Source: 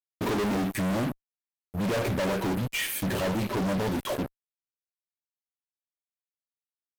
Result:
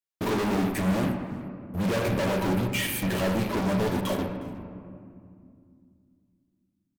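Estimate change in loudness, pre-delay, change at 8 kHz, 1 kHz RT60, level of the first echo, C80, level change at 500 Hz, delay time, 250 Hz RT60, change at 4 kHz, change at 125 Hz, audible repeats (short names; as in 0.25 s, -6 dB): +1.5 dB, 3 ms, 0.0 dB, 2.2 s, -21.5 dB, 7.0 dB, +1.5 dB, 0.361 s, 3.5 s, +1.0 dB, +2.5 dB, 1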